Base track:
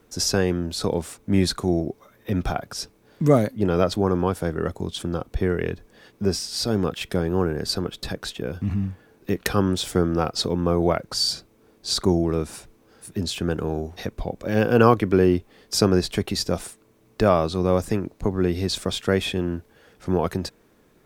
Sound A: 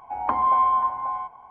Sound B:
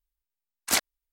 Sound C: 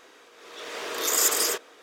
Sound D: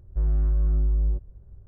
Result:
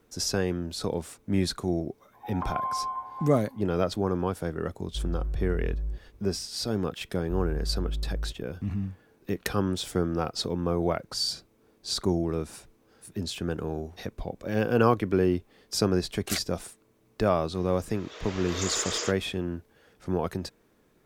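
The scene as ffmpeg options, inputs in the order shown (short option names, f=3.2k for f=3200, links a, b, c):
-filter_complex "[4:a]asplit=2[a][b];[0:a]volume=-6dB[c];[2:a]asuperstop=centerf=910:order=4:qfactor=2.5[d];[3:a]aresample=16000,aresample=44100[e];[1:a]atrim=end=1.5,asetpts=PTS-STARTPTS,volume=-11.5dB,afade=t=in:d=0.004:c=hsin,afade=t=out:st=1.496:d=0.004:c=hsin,adelay=2130[f];[a]atrim=end=1.67,asetpts=PTS-STARTPTS,volume=-8.5dB,afade=t=in:d=0.004:c=hsin,afade=t=out:st=1.666:d=0.004:c=hsin,adelay=4790[g];[b]atrim=end=1.67,asetpts=PTS-STARTPTS,volume=-9dB,afade=t=in:d=0.004:c=hsin,afade=t=out:st=1.666:d=0.004:c=hsin,adelay=314874S[h];[d]atrim=end=1.12,asetpts=PTS-STARTPTS,volume=-8dB,afade=t=in:d=0.004:c=hsin,afade=t=out:st=1.116:d=0.004:c=hsin,adelay=15590[i];[e]atrim=end=1.82,asetpts=PTS-STARTPTS,volume=-5.5dB,afade=t=in:d=0.004:c=hsin,afade=t=out:st=1.816:d=0.004:c=hsin,adelay=17540[j];[c][f][g][h][i][j]amix=inputs=6:normalize=0"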